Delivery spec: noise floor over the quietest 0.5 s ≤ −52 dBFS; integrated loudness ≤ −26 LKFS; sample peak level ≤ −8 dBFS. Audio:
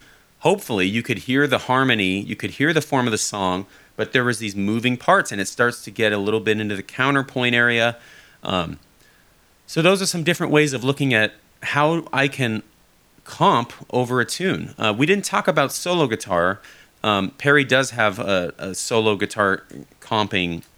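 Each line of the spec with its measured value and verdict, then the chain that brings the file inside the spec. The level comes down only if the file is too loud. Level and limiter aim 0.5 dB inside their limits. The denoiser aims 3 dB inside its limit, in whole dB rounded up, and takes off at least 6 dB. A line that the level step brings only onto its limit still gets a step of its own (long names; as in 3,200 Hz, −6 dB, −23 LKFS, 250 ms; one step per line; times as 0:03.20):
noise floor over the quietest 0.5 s −56 dBFS: in spec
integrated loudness −20.0 LKFS: out of spec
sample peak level −2.0 dBFS: out of spec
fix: level −6.5 dB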